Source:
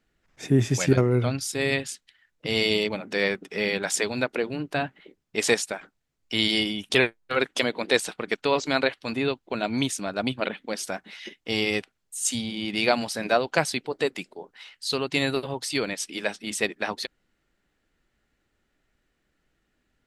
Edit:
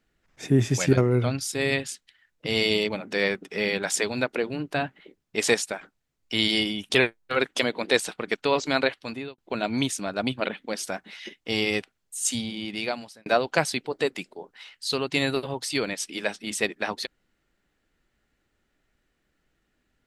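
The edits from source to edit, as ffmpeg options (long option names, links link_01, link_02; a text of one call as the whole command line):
ffmpeg -i in.wav -filter_complex "[0:a]asplit=3[link_01][link_02][link_03];[link_01]atrim=end=9.38,asetpts=PTS-STARTPTS,afade=type=out:start_time=8.94:duration=0.44[link_04];[link_02]atrim=start=9.38:end=13.26,asetpts=PTS-STARTPTS,afade=type=in:duration=0.004:curve=hsin,afade=type=out:start_time=3.01:duration=0.87[link_05];[link_03]atrim=start=13.26,asetpts=PTS-STARTPTS,afade=type=in:duration=0.004:curve=hsin[link_06];[link_04][link_05][link_06]concat=n=3:v=0:a=1" out.wav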